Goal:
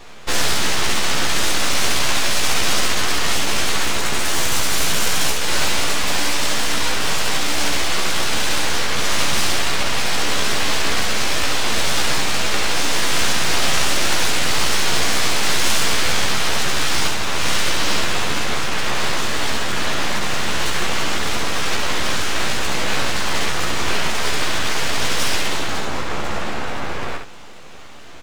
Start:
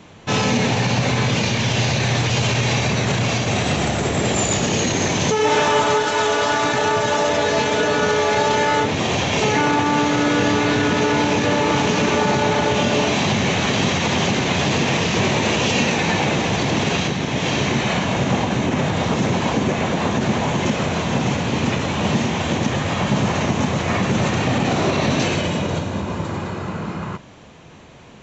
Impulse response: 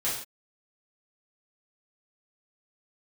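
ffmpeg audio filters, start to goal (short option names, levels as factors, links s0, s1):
-filter_complex "[0:a]highpass=170,afftfilt=real='re*lt(hypot(re,im),0.316)':imag='im*lt(hypot(re,im),0.316)':win_size=1024:overlap=0.75,aeval=exprs='abs(val(0))':c=same,asplit=2[s0][s1];[s1]aecho=0:1:14|69:0.631|0.596[s2];[s0][s2]amix=inputs=2:normalize=0,volume=1.68"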